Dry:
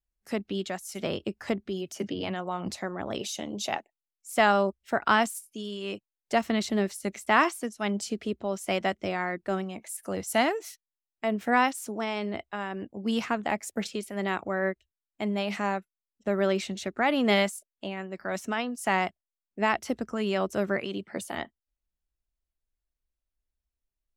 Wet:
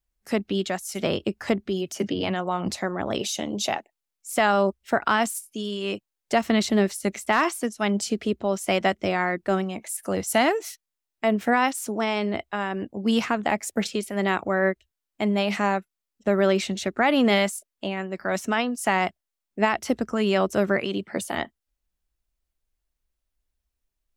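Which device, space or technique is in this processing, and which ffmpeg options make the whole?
clipper into limiter: -af "asoftclip=type=hard:threshold=-10.5dB,alimiter=limit=-16.5dB:level=0:latency=1:release=104,volume=6dB"

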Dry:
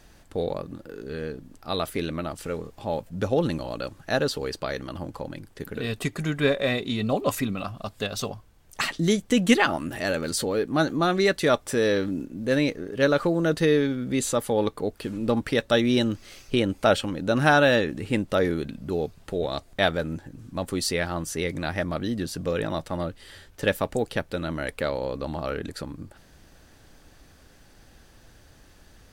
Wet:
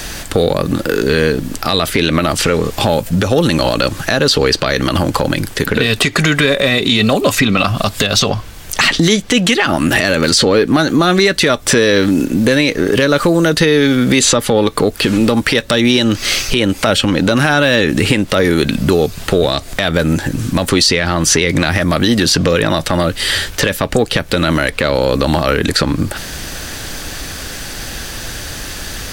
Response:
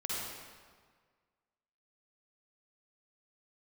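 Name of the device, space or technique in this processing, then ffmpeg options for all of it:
mastering chain: -filter_complex "[0:a]equalizer=f=870:t=o:w=0.77:g=-2,acrossover=split=340|6100[a][b][c];[a]acompressor=threshold=-33dB:ratio=4[d];[b]acompressor=threshold=-33dB:ratio=4[e];[c]acompressor=threshold=-59dB:ratio=4[f];[d][e][f]amix=inputs=3:normalize=0,acompressor=threshold=-36dB:ratio=2,asoftclip=type=tanh:threshold=-23.5dB,tiltshelf=f=1.2k:g=-4.5,alimiter=level_in=30dB:limit=-1dB:release=50:level=0:latency=1,volume=-1dB"

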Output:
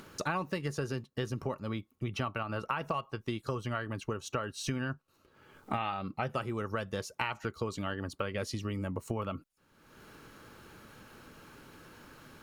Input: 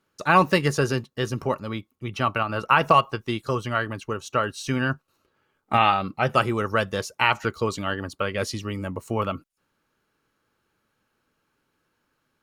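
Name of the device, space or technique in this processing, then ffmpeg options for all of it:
upward and downward compression: -af "lowshelf=f=440:g=4,acompressor=mode=upward:threshold=-37dB:ratio=2.5,acompressor=threshold=-32dB:ratio=6"

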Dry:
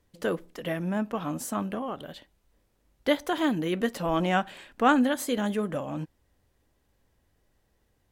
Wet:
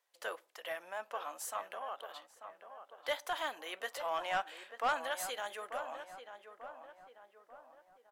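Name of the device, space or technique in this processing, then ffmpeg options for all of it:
saturation between pre-emphasis and de-emphasis: -filter_complex "[0:a]highpass=f=660:w=0.5412,highpass=f=660:w=1.3066,highshelf=f=5.4k:g=6.5,asoftclip=type=tanh:threshold=-20.5dB,lowshelf=f=250:g=5,highshelf=f=5.4k:g=-6.5,asplit=2[a][b];[b]adelay=890,lowpass=f=1.7k:p=1,volume=-9dB,asplit=2[c][d];[d]adelay=890,lowpass=f=1.7k:p=1,volume=0.49,asplit=2[e][f];[f]adelay=890,lowpass=f=1.7k:p=1,volume=0.49,asplit=2[g][h];[h]adelay=890,lowpass=f=1.7k:p=1,volume=0.49,asplit=2[i][j];[j]adelay=890,lowpass=f=1.7k:p=1,volume=0.49,asplit=2[k][l];[l]adelay=890,lowpass=f=1.7k:p=1,volume=0.49[m];[a][c][e][g][i][k][m]amix=inputs=7:normalize=0,volume=-5dB"

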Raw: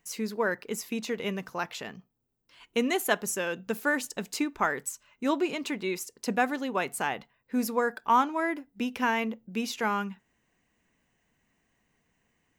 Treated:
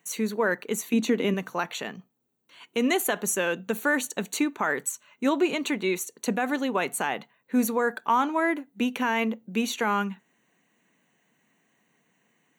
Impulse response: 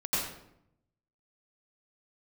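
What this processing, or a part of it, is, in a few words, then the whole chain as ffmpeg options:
PA system with an anti-feedback notch: -filter_complex "[0:a]asettb=1/sr,asplit=3[a][b][c];[a]atrim=end=0.934[d];[b]atrim=start=0.93:end=1.34,asetpts=PTS-STARTPTS,afade=t=in:d=0.004:c=qsin,afade=t=out:st=0.406:d=0.004:c=qsin,equalizer=f=280:t=o:w=0.77:g=12[e];[c]atrim=start=1.336[f];[d][e]acrossfade=d=0.004:c1=hsin:c2=qsin[g];[g][f]acrossfade=d=0.004:c1=qsin:c2=hsin,highpass=f=150:w=0.5412,highpass=f=150:w=1.3066,asuperstop=centerf=5100:order=20:qfactor=5.4,alimiter=limit=-19dB:level=0:latency=1:release=50,volume=5dB"

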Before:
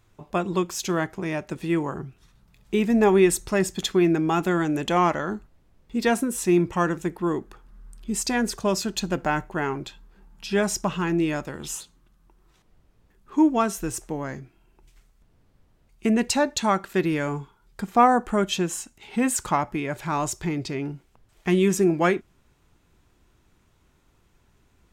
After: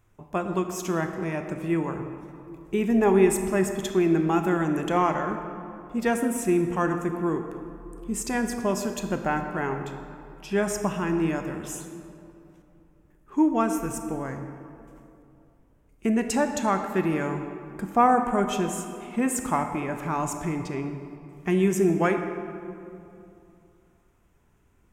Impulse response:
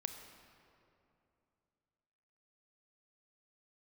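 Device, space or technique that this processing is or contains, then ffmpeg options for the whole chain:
stairwell: -filter_complex "[1:a]atrim=start_sample=2205[a];[0:a][a]afir=irnorm=-1:irlink=0,equalizer=f=4.2k:t=o:w=0.75:g=-11.5"

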